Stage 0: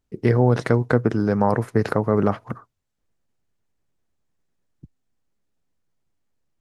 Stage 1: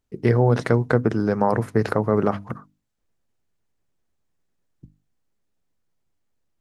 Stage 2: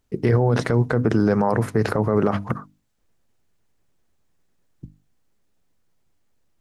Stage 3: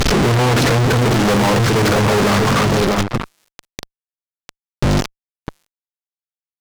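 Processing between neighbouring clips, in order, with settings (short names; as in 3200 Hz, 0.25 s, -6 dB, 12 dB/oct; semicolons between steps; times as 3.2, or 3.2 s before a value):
notches 50/100/150/200/250/300 Hz
maximiser +15 dB; gain -8 dB
delta modulation 32 kbps, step -29.5 dBFS; outdoor echo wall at 110 m, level -11 dB; fuzz box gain 42 dB, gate -48 dBFS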